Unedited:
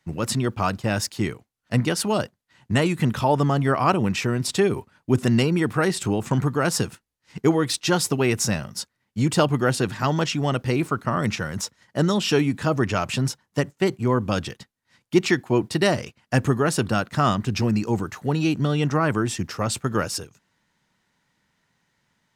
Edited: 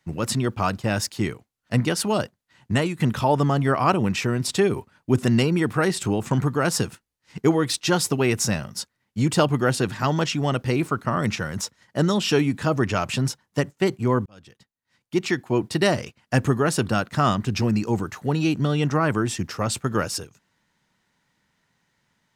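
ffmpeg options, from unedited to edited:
-filter_complex "[0:a]asplit=3[a][b][c];[a]atrim=end=3,asetpts=PTS-STARTPTS,afade=t=out:st=2.72:d=0.28:silence=0.375837[d];[b]atrim=start=3:end=14.26,asetpts=PTS-STARTPTS,afade=t=in:d=0.004:c=hsin:silence=0.375837,afade=t=out:st=11.256:d=0.004:c=hsin[e];[c]atrim=start=14.26,asetpts=PTS-STARTPTS,afade=t=in:d=1.55[f];[d][e][f]concat=n=3:v=0:a=1"

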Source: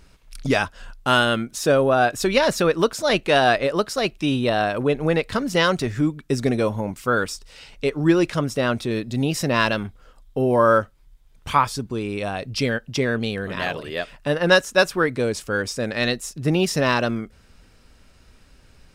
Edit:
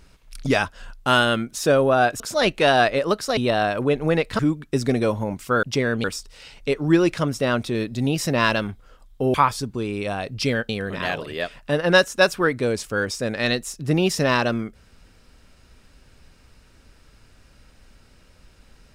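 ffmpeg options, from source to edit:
-filter_complex "[0:a]asplit=8[a][b][c][d][e][f][g][h];[a]atrim=end=2.202[i];[b]atrim=start=2.878:end=4.052[j];[c]atrim=start=4.358:end=5.382[k];[d]atrim=start=5.958:end=7.202[l];[e]atrim=start=12.848:end=13.262[m];[f]atrim=start=7.198:end=10.502[n];[g]atrim=start=11.498:end=12.852[o];[h]atrim=start=13.258[p];[i][j]acrossfade=d=0.004:c1=hsin:c2=hsin[q];[q][k]acrossfade=d=0.004:c1=hsin:c2=hsin[r];[r][l]acrossfade=d=0.004:c1=hsin:c2=hsin[s];[s][m]acrossfade=d=0.004:c1=hsin:c2=hsin[t];[t][n]acrossfade=d=0.004:c1=hsin:c2=hsin[u];[u][o]acrossfade=d=0.004:c1=hsin:c2=hsin[v];[v][p]acrossfade=d=0.004:c1=hsin:c2=hsin"

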